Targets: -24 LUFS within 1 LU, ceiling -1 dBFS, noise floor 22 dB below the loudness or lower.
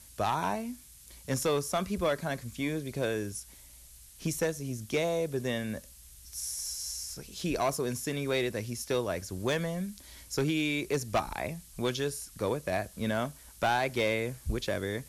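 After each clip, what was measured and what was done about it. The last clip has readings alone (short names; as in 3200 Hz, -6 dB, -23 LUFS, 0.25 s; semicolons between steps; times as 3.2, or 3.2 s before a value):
clipped 0.7%; flat tops at -21.5 dBFS; noise floor -53 dBFS; noise floor target -55 dBFS; loudness -32.5 LUFS; peak -21.5 dBFS; loudness target -24.0 LUFS
-> clip repair -21.5 dBFS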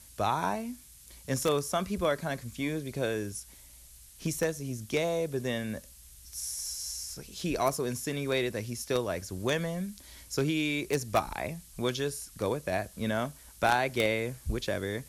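clipped 0.0%; noise floor -53 dBFS; noise floor target -54 dBFS
-> noise print and reduce 6 dB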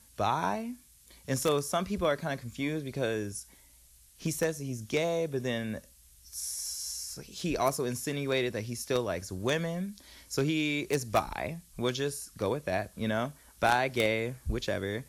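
noise floor -59 dBFS; loudness -32.0 LUFS; peak -12.5 dBFS; loudness target -24.0 LUFS
-> gain +8 dB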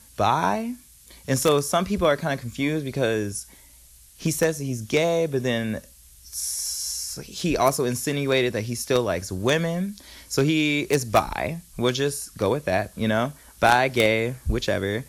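loudness -24.0 LUFS; peak -4.5 dBFS; noise floor -51 dBFS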